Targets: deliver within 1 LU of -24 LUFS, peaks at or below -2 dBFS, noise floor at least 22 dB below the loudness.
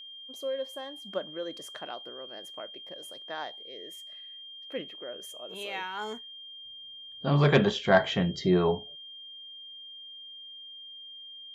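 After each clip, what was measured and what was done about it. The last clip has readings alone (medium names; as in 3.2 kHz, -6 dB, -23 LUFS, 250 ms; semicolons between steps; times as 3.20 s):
steady tone 3.2 kHz; tone level -43 dBFS; loudness -30.5 LUFS; peak level -9.5 dBFS; loudness target -24.0 LUFS
-> band-stop 3.2 kHz, Q 30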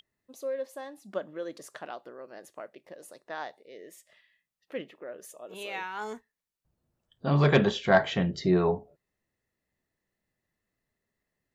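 steady tone not found; loudness -29.0 LUFS; peak level -10.0 dBFS; loudness target -24.0 LUFS
-> trim +5 dB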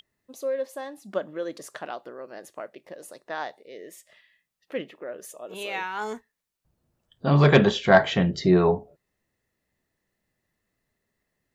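loudness -24.0 LUFS; peak level -4.5 dBFS; noise floor -80 dBFS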